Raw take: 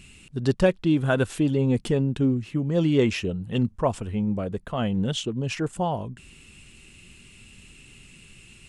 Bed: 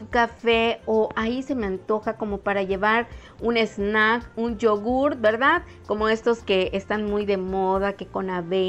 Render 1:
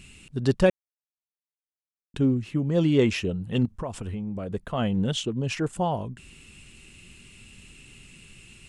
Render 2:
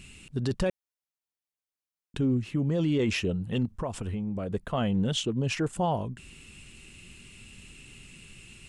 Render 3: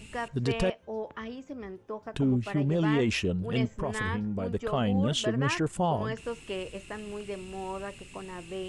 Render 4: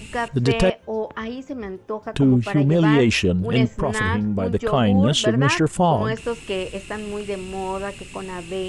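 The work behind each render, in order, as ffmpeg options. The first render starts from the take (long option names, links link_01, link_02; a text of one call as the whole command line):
ffmpeg -i in.wav -filter_complex "[0:a]asettb=1/sr,asplit=3[link_01][link_02][link_03];[link_01]atrim=end=3.654[link_04];[link_02]atrim=start=3.65:end=4.52,asetpts=PTS-STARTPTS,afade=type=in:duration=0.004:curve=qsin,afade=type=out:start_time=0.866:duration=0.004:curve=qsin,acompressor=threshold=-28dB:ratio=6:attack=3.2:release=140:knee=1:detection=peak[link_05];[link_03]atrim=start=4.516[link_06];[link_04][link_05]acrossfade=duration=0.004:curve1=hsin:curve2=qsin[link_07];[link_07][link_06]acrossfade=duration=0.004:curve1=qsin:curve2=hsin,asplit=3[link_08][link_09][link_10];[link_08]atrim=end=0.7,asetpts=PTS-STARTPTS,afade=type=out:start_time=0.696:duration=0.004:curve=hsin[link_11];[link_09]atrim=start=0.7:end=2.14,asetpts=PTS-STARTPTS,volume=0[link_12];[link_10]atrim=start=2.14,asetpts=PTS-STARTPTS,afade=type=in:duration=0.004:curve=hsin[link_13];[link_11][link_12][link_13]concat=n=3:v=0:a=1" out.wav
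ffmpeg -i in.wav -af "alimiter=limit=-19dB:level=0:latency=1:release=15" out.wav
ffmpeg -i in.wav -i bed.wav -filter_complex "[1:a]volume=-14.5dB[link_01];[0:a][link_01]amix=inputs=2:normalize=0" out.wav
ffmpeg -i in.wav -af "volume=9.5dB" out.wav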